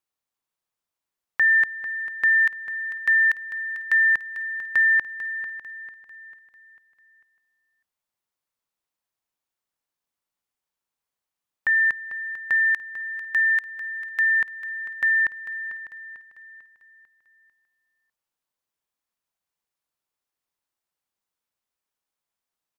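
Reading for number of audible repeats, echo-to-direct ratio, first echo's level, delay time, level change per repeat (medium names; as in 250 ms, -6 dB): 4, -11.0 dB, -12.0 dB, 446 ms, -7.0 dB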